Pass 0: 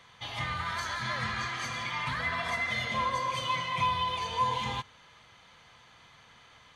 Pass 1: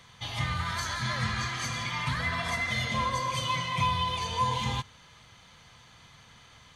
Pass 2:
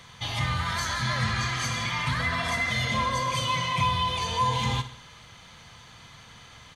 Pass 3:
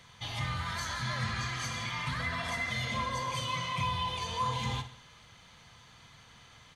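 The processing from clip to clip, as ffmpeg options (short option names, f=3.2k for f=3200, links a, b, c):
-af "bass=f=250:g=8,treble=f=4k:g=7"
-filter_complex "[0:a]asplit=2[a][b];[b]alimiter=level_in=4dB:limit=-24dB:level=0:latency=1,volume=-4dB,volume=-1.5dB[c];[a][c]amix=inputs=2:normalize=0,aecho=1:1:63|126|189|252|315:0.2|0.108|0.0582|0.0314|0.017"
-af "flanger=delay=0.4:depth=8.2:regen=-82:speed=1.3:shape=sinusoidal,volume=-2.5dB"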